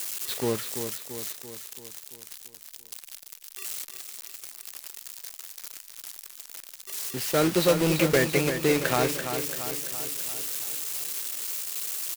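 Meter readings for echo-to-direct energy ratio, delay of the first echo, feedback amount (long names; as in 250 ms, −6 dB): −6.5 dB, 338 ms, 56%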